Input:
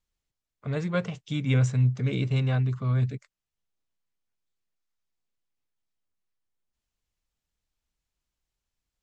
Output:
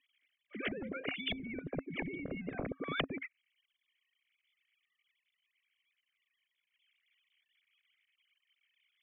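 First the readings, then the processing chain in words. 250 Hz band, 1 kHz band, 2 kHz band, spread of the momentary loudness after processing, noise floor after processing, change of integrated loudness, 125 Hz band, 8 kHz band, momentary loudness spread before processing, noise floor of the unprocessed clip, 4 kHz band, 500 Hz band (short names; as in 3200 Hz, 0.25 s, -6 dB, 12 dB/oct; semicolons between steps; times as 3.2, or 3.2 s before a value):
-9.5 dB, -5.0 dB, -2.0 dB, 5 LU, under -85 dBFS, -13.0 dB, -25.0 dB, n/a, 9 LU, under -85 dBFS, -0.5 dB, -7.5 dB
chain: sine-wave speech; vowel filter i; limiter -28.5 dBFS, peak gain reduction 11 dB; pre-echo 0.119 s -20 dB; treble ducked by the level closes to 340 Hz, closed at -36.5 dBFS; spectral compressor 10:1; gain +10 dB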